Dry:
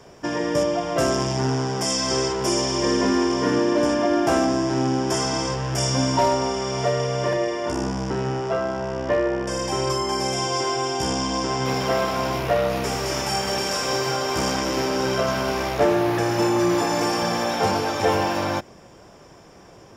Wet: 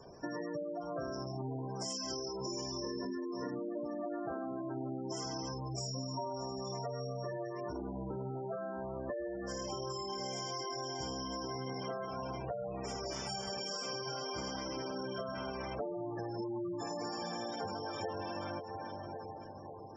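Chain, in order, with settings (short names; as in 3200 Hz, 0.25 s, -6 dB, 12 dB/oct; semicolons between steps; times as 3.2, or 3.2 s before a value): added harmonics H 2 -19 dB, 3 -27 dB, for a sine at -10 dBFS; high shelf 3800 Hz +4 dB; split-band echo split 940 Hz, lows 0.55 s, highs 0.315 s, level -14 dB; spectral gate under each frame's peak -15 dB strong; compressor 5:1, threshold -33 dBFS, peak gain reduction 16 dB; gain -5 dB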